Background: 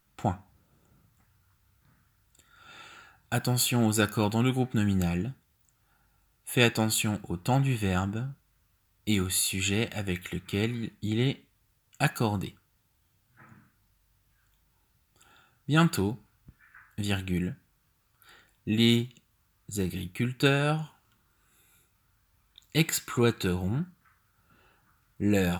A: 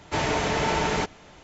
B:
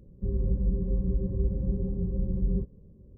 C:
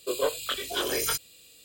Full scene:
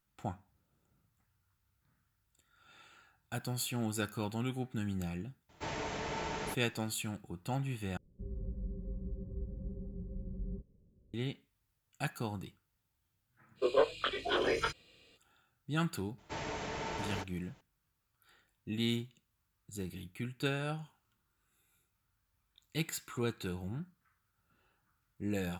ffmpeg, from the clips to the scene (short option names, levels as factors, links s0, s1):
-filter_complex "[1:a]asplit=2[s0][s1];[0:a]volume=0.282[s2];[3:a]lowpass=2500[s3];[s2]asplit=2[s4][s5];[s4]atrim=end=7.974[s6];[2:a]atrim=end=3.17,asetpts=PTS-STARTPTS,volume=0.2[s7];[s5]atrim=start=11.136[s8];[s0]atrim=end=1.43,asetpts=PTS-STARTPTS,volume=0.2,afade=t=in:d=0.004:c=hsin,afade=t=out:st=1.426:d=0.004:c=hsin,adelay=242109S[s9];[s3]atrim=end=1.64,asetpts=PTS-STARTPTS,volume=0.944,afade=t=in:d=0.05,afade=t=out:st=1.59:d=0.05,adelay=13550[s10];[s1]atrim=end=1.43,asetpts=PTS-STARTPTS,volume=0.178,afade=t=in:d=0.004:c=hsin,afade=t=out:st=1.426:d=0.004:c=hsin,adelay=16180[s11];[s6][s7]acrossfade=d=0.004:c1=hsin:c2=hsin[s12];[s12][s8]acrossfade=d=0.004:c1=hsin:c2=hsin[s13];[s13][s9][s10][s11]amix=inputs=4:normalize=0"